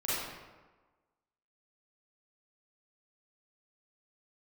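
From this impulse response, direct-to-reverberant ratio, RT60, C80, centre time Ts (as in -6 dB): -10.5 dB, 1.3 s, 0.0 dB, 0.108 s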